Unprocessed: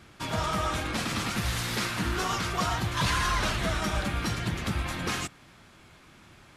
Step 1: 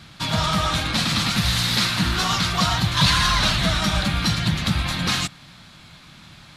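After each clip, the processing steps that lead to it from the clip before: fifteen-band EQ 160 Hz +7 dB, 400 Hz -9 dB, 4000 Hz +10 dB; gain +6 dB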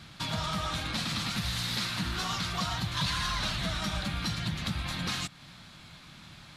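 compressor 2:1, threshold -30 dBFS, peak gain reduction 9.5 dB; gain -4.5 dB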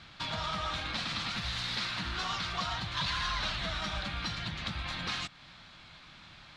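LPF 4600 Hz 12 dB/oct; bell 160 Hz -8 dB 2.4 oct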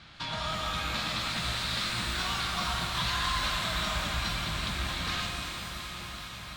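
echo with dull and thin repeats by turns 0.189 s, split 1800 Hz, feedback 89%, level -8 dB; shimmer reverb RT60 2.3 s, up +12 st, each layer -8 dB, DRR 2.5 dB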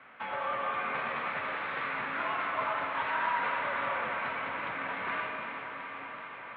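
mistuned SSB -77 Hz 320–2400 Hz; gain +2.5 dB

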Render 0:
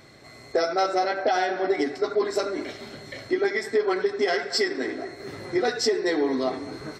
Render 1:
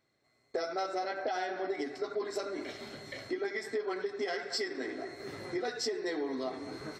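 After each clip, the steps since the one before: gate with hold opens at -33 dBFS; compressor 2:1, threshold -31 dBFS, peak gain reduction 7.5 dB; low shelf 150 Hz -4.5 dB; gain -4.5 dB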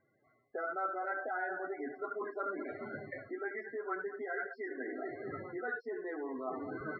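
reverse; compressor 10:1, threshold -41 dBFS, peak gain reduction 13 dB; reverse; loudest bins only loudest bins 32; ladder low-pass 1600 Hz, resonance 65%; gain +14.5 dB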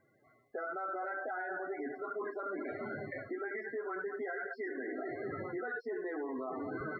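limiter -36 dBFS, peak gain reduction 11 dB; gain +4.5 dB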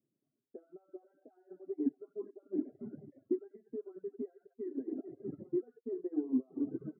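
Butterworth band-pass 220 Hz, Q 1.1; reverb removal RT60 1.1 s; upward expander 2.5:1, over -55 dBFS; gain +14.5 dB

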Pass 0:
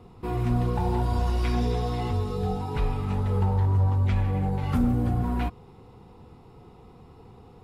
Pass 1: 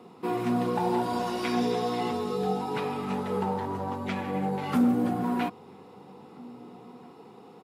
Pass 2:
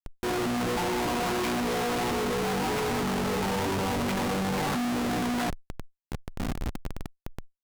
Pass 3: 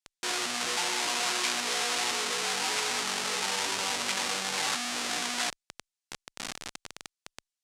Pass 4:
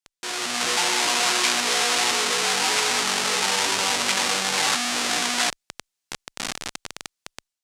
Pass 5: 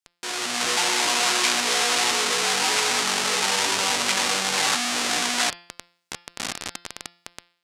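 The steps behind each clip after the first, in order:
HPF 190 Hz 24 dB/oct; outdoor echo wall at 280 m, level -23 dB; gain +3 dB
Schmitt trigger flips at -39.5 dBFS; added harmonics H 5 -13 dB, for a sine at -23.5 dBFS
weighting filter ITU-R 468; gain -3 dB
AGC gain up to 8 dB
de-hum 173.4 Hz, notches 31

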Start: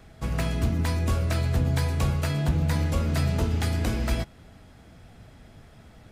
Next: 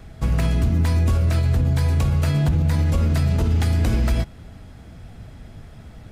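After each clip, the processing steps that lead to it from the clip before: low shelf 190 Hz +7.5 dB; limiter -16 dBFS, peak gain reduction 8 dB; gain +4 dB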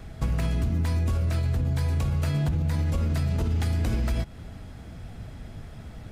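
compressor 4:1, threshold -23 dBFS, peak gain reduction 7 dB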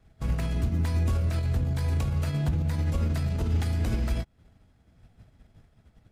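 limiter -21.5 dBFS, peak gain reduction 6.5 dB; upward expander 2.5:1, over -42 dBFS; gain +4 dB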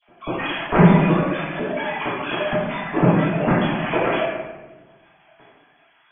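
sine-wave speech; flange 1.2 Hz, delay 4.6 ms, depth 2.6 ms, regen -36%; reverb RT60 1.2 s, pre-delay 3 ms, DRR -13 dB; gain -9.5 dB

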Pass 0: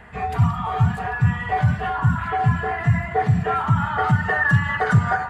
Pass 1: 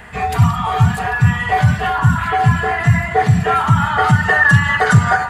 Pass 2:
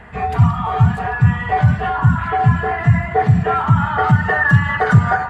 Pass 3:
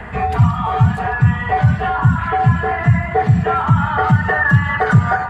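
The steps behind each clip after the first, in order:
high shelf 3200 Hz +12 dB; gain +5.5 dB
LPF 1300 Hz 6 dB/oct
three-band squash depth 40%

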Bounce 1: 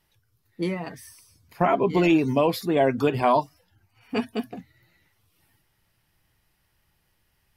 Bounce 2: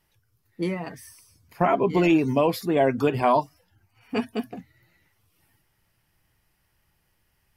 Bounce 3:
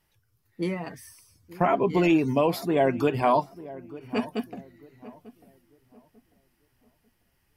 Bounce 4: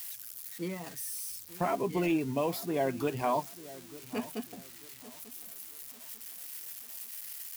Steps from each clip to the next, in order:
bell 3800 Hz -4 dB 0.44 oct
darkening echo 0.894 s, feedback 32%, low-pass 1100 Hz, level -17 dB; gain -1.5 dB
switching spikes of -27 dBFS; gain -8 dB

